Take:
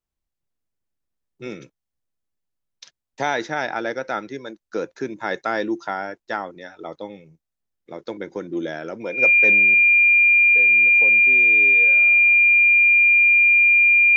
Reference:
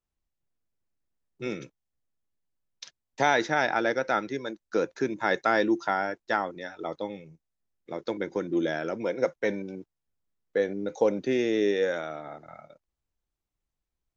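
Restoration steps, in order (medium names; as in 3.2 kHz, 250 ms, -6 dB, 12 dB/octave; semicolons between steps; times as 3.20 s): band-stop 2.4 kHz, Q 30; gain correction +11.5 dB, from 9.74 s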